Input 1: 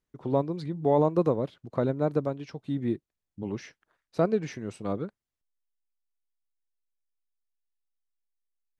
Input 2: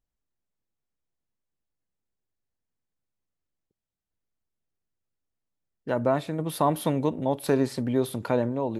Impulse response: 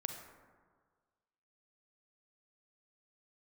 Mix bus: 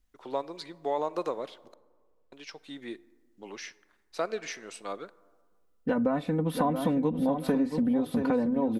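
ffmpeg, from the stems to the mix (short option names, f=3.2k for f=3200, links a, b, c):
-filter_complex "[0:a]highpass=340,tiltshelf=f=840:g=-8,volume=-2.5dB,asplit=3[a][b][c];[a]atrim=end=1.74,asetpts=PTS-STARTPTS,afade=t=out:st=1.736:d=0.004:c=hsin[d];[b]atrim=start=1.74:end=2.32,asetpts=PTS-STARTPTS,volume=0[e];[c]atrim=start=2.32,asetpts=PTS-STARTPTS,afade=t=in:d=0.004:c=hsin[f];[d][e][f]concat=n=3:v=0:a=1,asplit=2[g][h];[h]volume=-13dB[i];[1:a]bass=f=250:g=7,treble=f=4k:g=-8,aecho=1:1:4:0.9,adynamicequalizer=threshold=0.0141:dfrequency=1600:dqfactor=0.7:tfrequency=1600:tqfactor=0.7:attack=5:release=100:ratio=0.375:range=1.5:mode=cutabove:tftype=highshelf,volume=1.5dB,asplit=2[j][k];[k]volume=-9dB[l];[2:a]atrim=start_sample=2205[m];[i][m]afir=irnorm=-1:irlink=0[n];[l]aecho=0:1:677|1354|2031|2708:1|0.23|0.0529|0.0122[o];[g][j][n][o]amix=inputs=4:normalize=0,acompressor=threshold=-24dB:ratio=5"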